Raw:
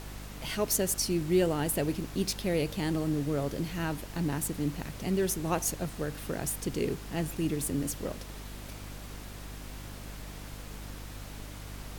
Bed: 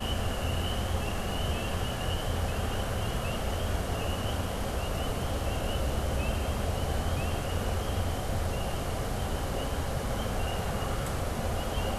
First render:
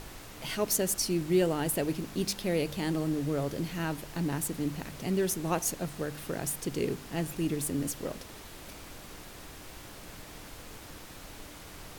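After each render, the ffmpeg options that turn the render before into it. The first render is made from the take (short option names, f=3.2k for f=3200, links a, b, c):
-af "bandreject=f=50:t=h:w=4,bandreject=f=100:t=h:w=4,bandreject=f=150:t=h:w=4,bandreject=f=200:t=h:w=4,bandreject=f=250:t=h:w=4"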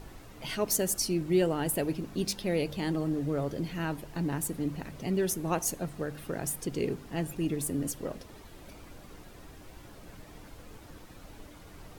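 -af "afftdn=nr=9:nf=-47"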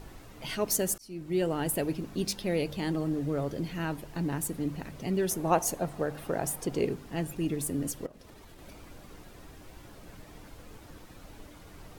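-filter_complex "[0:a]asettb=1/sr,asplit=3[a][b][c];[a]atrim=end=5.314[d];[b]atrim=start=5.31:end=6.85,asetpts=PTS-STARTPTS,afade=t=in:d=0.004:c=qsin,afade=t=out:st=1.536:d=0.004:c=qsin,equalizer=f=740:w=0.96:g=8[e];[c]atrim=start=6.846[f];[d][e]acrossfade=d=0.004:c1=hsin:c2=qsin[g];[g][f]acrossfade=d=0.004:c1=qsin:c2=hsin,asettb=1/sr,asplit=3[h][i][j];[h]atrim=end=8.064[k];[i]atrim=start=8.06:end=8.59,asetpts=PTS-STARTPTS,afade=t=in:d=0.004:c=qsin,afade=t=out:st=0.526:d=0.004:c=qsin,acompressor=threshold=-46dB:ratio=16:attack=3.2:release=140:knee=1:detection=peak[l];[j]atrim=start=8.586[m];[k][l]acrossfade=d=0.004:c1=hsin:c2=qsin[n];[n][m]acrossfade=d=0.004:c1=qsin:c2=hsin,asplit=2[o][p];[o]atrim=end=0.98,asetpts=PTS-STARTPTS,afade=t=out:st=0.976:d=0.004:c=hsin[q];[p]atrim=start=0.98,asetpts=PTS-STARTPTS,afade=t=in:d=0.58[r];[q][r]concat=n=2:v=0:a=1"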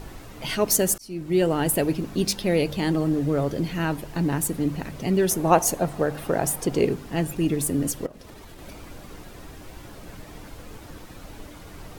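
-af "volume=7.5dB"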